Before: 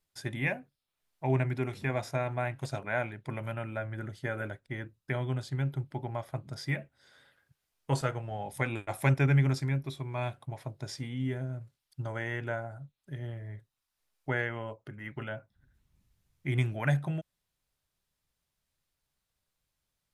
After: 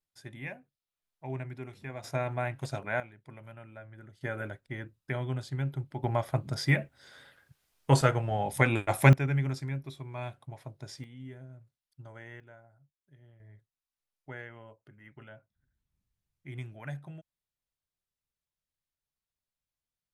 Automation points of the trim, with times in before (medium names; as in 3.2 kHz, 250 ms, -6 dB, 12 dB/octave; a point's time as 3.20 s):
-9.5 dB
from 2.04 s 0 dB
from 3.00 s -12 dB
from 4.21 s -1 dB
from 6.04 s +7 dB
from 9.13 s -4.5 dB
from 11.04 s -12 dB
from 12.40 s -19.5 dB
from 13.40 s -12 dB